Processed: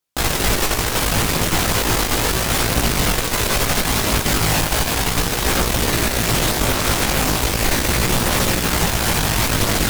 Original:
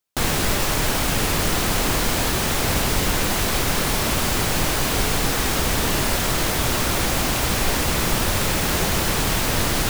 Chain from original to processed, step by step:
multi-voice chorus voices 2, 0.36 Hz, delay 18 ms, depth 1.4 ms
harmonic generator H 8 −19 dB, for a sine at −9 dBFS
level +5 dB

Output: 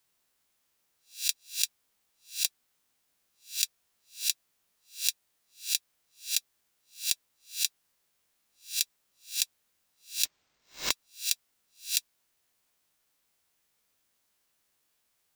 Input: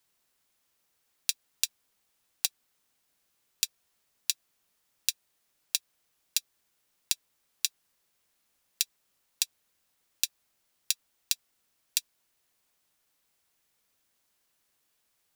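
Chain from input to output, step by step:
peak hold with a rise ahead of every peak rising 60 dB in 0.31 s
0:10.25–0:10.91: bad sample-rate conversion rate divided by 4×, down none, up hold
level −1.5 dB

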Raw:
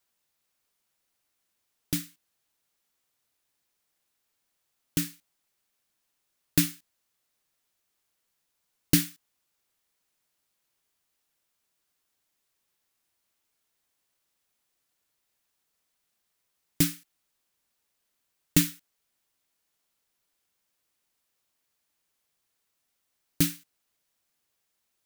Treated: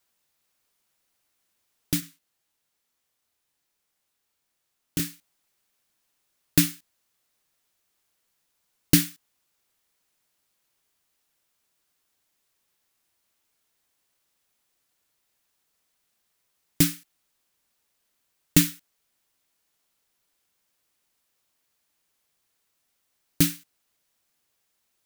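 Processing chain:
0:02.00–0:05.00: chorus effect 2 Hz, depth 6.6 ms
level +3.5 dB

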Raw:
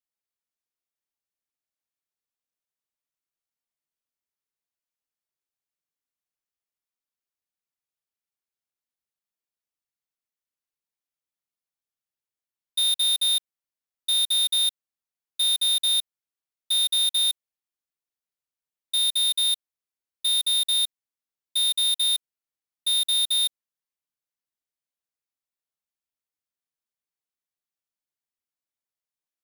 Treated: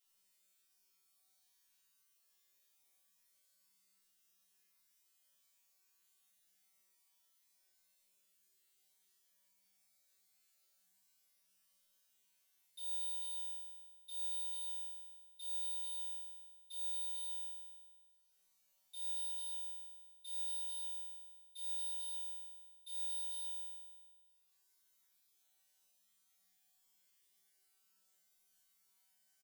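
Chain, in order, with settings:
high-shelf EQ 2,700 Hz +9 dB
upward compression, threshold −26 dBFS
tuned comb filter 190 Hz, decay 1.5 s, mix 100%
single-tap delay 146 ms −13.5 dB
level −4.5 dB

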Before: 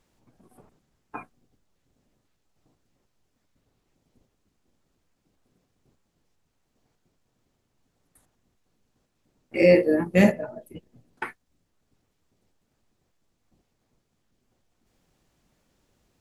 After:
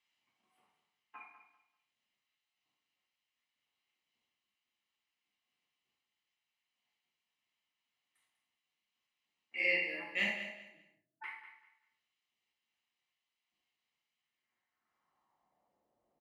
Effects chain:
0:10.41–0:11.24: expanding power law on the bin magnitudes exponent 3.6
mains-hum notches 50/100/150 Hz
comb filter 1 ms, depth 41%
reverb whose tail is shaped and stops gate 190 ms falling, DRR −1 dB
band-pass filter sweep 2,700 Hz → 590 Hz, 0:14.17–0:15.83
on a send: repeating echo 195 ms, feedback 25%, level −11 dB
on the sum: level −4.5 dB

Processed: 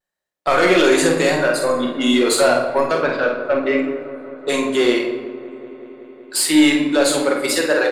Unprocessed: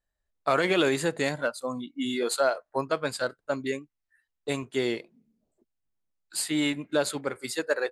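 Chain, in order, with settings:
high-pass filter 260 Hz 12 dB per octave
noise gate −60 dBFS, range −10 dB
0:02.97–0:03.79: low-pass filter 2,700 Hz 24 dB per octave
in parallel at +1.5 dB: brickwall limiter −23.5 dBFS, peak gain reduction 10.5 dB
on the sum: soft clipping −17.5 dBFS, distortion −15 dB
pitch vibrato 0.83 Hz 36 cents
double-tracking delay 49 ms −6 dB
on a send: delay with a low-pass on its return 188 ms, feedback 81%, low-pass 1,400 Hz, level −16.5 dB
on the sum: rectangular room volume 630 cubic metres, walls mixed, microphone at 0.99 metres
level +6.5 dB

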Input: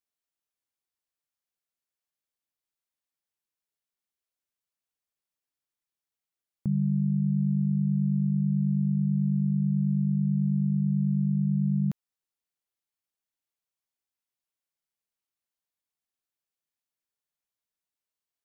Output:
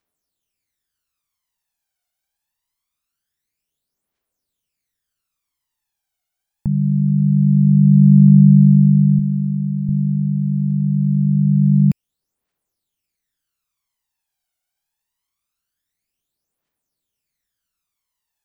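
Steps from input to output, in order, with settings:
0:09.19–0:09.89: low-shelf EQ 140 Hz −10.5 dB
phase shifter 0.24 Hz, delay 1.4 ms, feedback 69%
level +7.5 dB

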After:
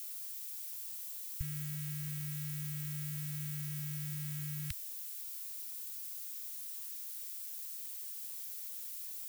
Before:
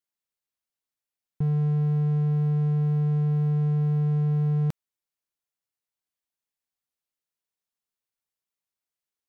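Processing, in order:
inverse Chebyshev band-stop filter 280–590 Hz, stop band 80 dB
background noise violet −49 dBFS
level +5 dB

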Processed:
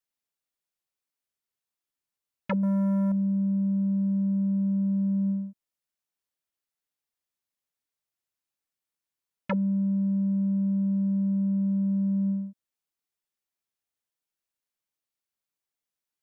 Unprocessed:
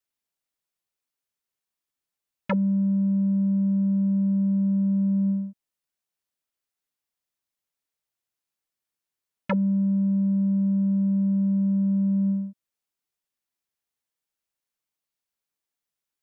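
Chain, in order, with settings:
0:02.63–0:03.12: leveller curve on the samples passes 2
level −3 dB

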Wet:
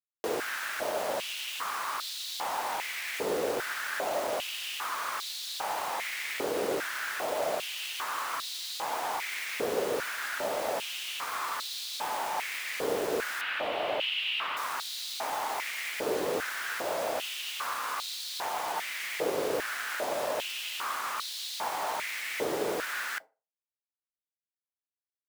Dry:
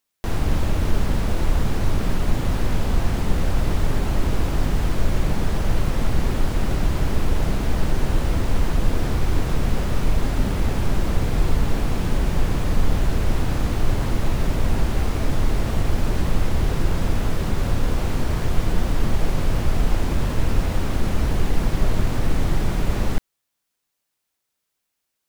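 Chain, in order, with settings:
bit reduction 6 bits
0:13.41–0:14.57: drawn EQ curve 1,700 Hz 0 dB, 2,900 Hz +9 dB, 6,200 Hz −16 dB
feedback delay network reverb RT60 0.32 s, low-frequency decay 0.75×, high-frequency decay 0.65×, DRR 18.5 dB
high-pass on a step sequencer 2.5 Hz 450–3,900 Hz
level −4.5 dB

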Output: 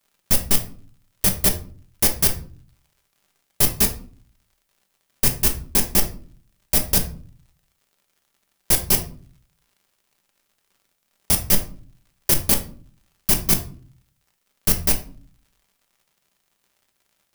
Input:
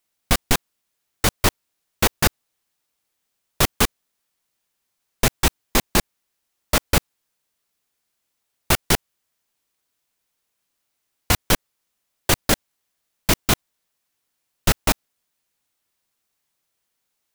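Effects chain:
samples in bit-reversed order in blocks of 32 samples
high-shelf EQ 5,400 Hz +7 dB
surface crackle 110 per second −45 dBFS
convolution reverb RT60 0.45 s, pre-delay 5 ms, DRR 4 dB
level −4.5 dB

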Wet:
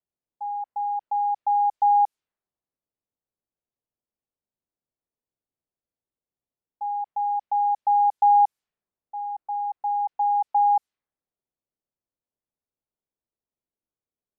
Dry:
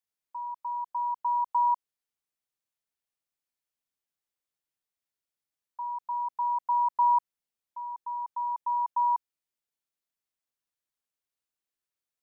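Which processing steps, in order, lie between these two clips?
low-pass that shuts in the quiet parts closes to 730 Hz, open at −25.5 dBFS
speed change −15%
level +6 dB

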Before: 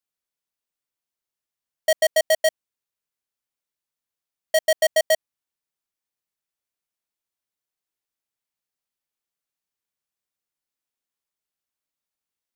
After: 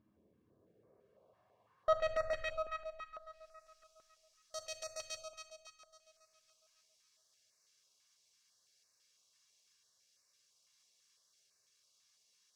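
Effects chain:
lower of the sound and its delayed copy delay 1.8 ms
high-pass filter 73 Hz
spectral tilt −4 dB per octave
brickwall limiter −20.5 dBFS, peak gain reduction 13 dB
upward compression, threshold −48 dBFS
band-pass filter sweep 290 Hz → 5,700 Hz, 0:00.45–0:03.58
tube saturation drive 35 dB, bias 0.6
delay that swaps between a low-pass and a high-pass 138 ms, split 1,400 Hz, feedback 72%, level −8 dB
convolution reverb RT60 0.85 s, pre-delay 9 ms, DRR 5 dB
notch on a step sequencer 6 Hz 470–3,200 Hz
level +10.5 dB

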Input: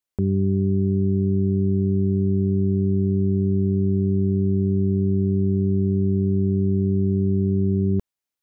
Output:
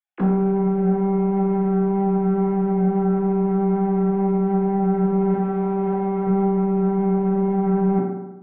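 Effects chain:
three sine waves on the formant tracks
soft clipping −23.5 dBFS, distortion −11 dB
0:05.34–0:06.27: low-shelf EQ 340 Hz −9 dB
convolution reverb RT60 1.0 s, pre-delay 3 ms, DRR −5.5 dB
speech leveller within 3 dB 0.5 s

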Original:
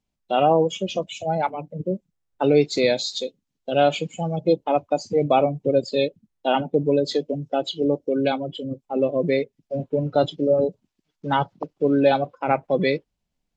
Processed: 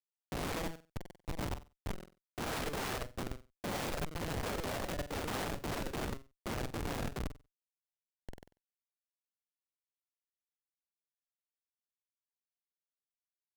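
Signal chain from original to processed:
source passing by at 0:03.61, 6 m/s, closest 8 metres
low-pass filter 1,200 Hz 6 dB per octave
comparator with hysteresis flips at −23 dBFS
flutter between parallel walls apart 8.1 metres, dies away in 0.29 s
wrap-around overflow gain 46.5 dB
level +14 dB

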